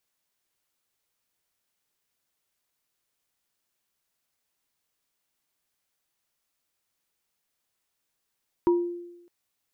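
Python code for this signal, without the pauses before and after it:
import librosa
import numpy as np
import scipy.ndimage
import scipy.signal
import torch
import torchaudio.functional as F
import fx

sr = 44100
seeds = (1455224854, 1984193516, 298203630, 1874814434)

y = fx.additive_free(sr, length_s=0.61, hz=348.0, level_db=-16, upper_db=(-9,), decay_s=0.95, upper_decays_s=(0.29,), upper_hz=(955.0,))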